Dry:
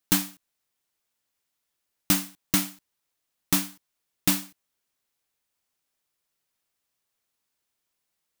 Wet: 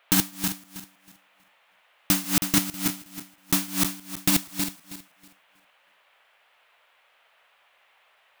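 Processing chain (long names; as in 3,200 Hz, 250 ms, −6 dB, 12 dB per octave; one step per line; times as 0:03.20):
feedback delay that plays each chunk backwards 160 ms, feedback 47%, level −1 dB
noise in a band 540–3,100 Hz −63 dBFS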